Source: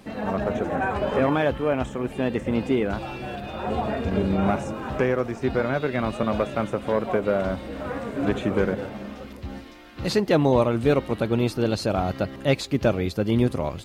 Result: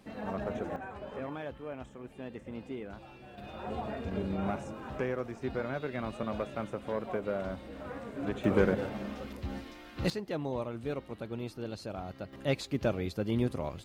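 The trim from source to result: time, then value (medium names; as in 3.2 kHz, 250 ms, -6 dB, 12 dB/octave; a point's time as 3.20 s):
-10 dB
from 0.76 s -18 dB
from 3.38 s -11 dB
from 8.44 s -3 dB
from 10.10 s -16 dB
from 12.33 s -9 dB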